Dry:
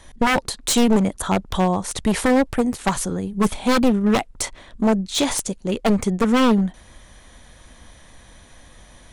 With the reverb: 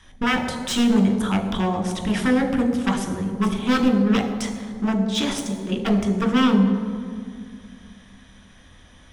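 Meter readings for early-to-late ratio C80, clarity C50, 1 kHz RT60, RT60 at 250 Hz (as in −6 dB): 9.0 dB, 8.0 dB, 2.0 s, 2.8 s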